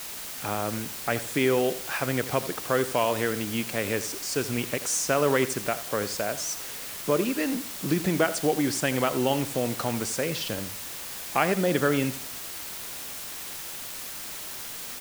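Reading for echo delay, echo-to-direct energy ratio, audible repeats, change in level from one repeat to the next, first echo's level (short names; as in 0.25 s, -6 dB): 84 ms, -14.0 dB, 2, -10.5 dB, -14.5 dB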